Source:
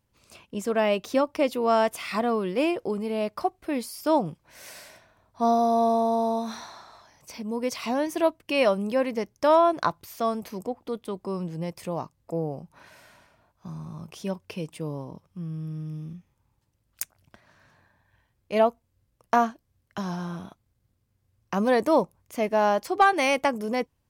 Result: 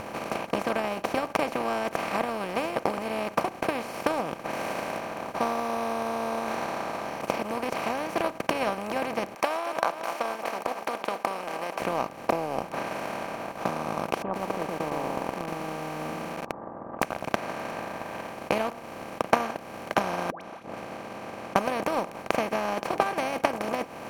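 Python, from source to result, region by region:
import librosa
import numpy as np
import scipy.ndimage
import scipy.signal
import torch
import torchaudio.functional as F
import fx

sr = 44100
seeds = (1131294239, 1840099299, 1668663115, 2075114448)

y = fx.chain(x, sr, fx.highpass(hz=780.0, slope=24),
    fx.echo_feedback(ms=226, feedback_pct=47, wet_db=-21.0), at=(9.35, 11.8))
y = fx.chain(y, sr, fx.cheby_ripple(hz=1200.0, ripple_db=6),
    fx.echo_crushed(ms=117, feedback_pct=35, bits=10, wet_db=-3.0), at=(14.22, 17.02))
y = fx.chain(y, sr, fx.gate_flip(shuts_db=-32.0, range_db=-42),
    fx.bandpass_edges(low_hz=110.0, high_hz=3900.0),
    fx.dispersion(late='highs', ms=110.0, hz=900.0), at=(20.3, 21.56))
y = fx.bin_compress(y, sr, power=0.2)
y = fx.peak_eq(y, sr, hz=83.0, db=10.5, octaves=1.3)
y = fx.transient(y, sr, attack_db=10, sustain_db=-7)
y = y * 10.0 ** (-16.0 / 20.0)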